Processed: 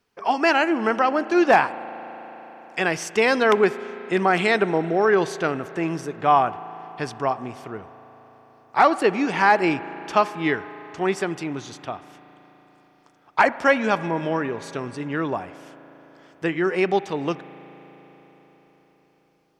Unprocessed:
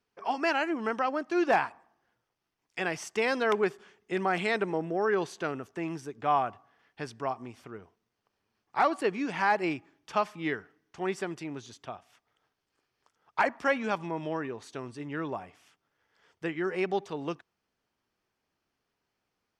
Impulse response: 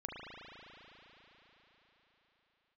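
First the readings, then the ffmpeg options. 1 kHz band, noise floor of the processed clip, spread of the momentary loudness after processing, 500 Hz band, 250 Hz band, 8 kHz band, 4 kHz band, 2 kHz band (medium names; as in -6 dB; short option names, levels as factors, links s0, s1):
+9.0 dB, -60 dBFS, 17 LU, +9.0 dB, +9.0 dB, +9.0 dB, +9.0 dB, +9.0 dB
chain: -filter_complex "[0:a]asplit=2[s0][s1];[1:a]atrim=start_sample=2205[s2];[s1][s2]afir=irnorm=-1:irlink=0,volume=0.2[s3];[s0][s3]amix=inputs=2:normalize=0,volume=2.51"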